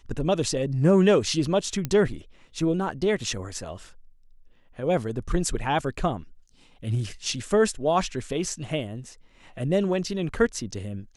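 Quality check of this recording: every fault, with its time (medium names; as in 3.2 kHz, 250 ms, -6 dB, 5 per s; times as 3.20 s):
1.85 s: pop -13 dBFS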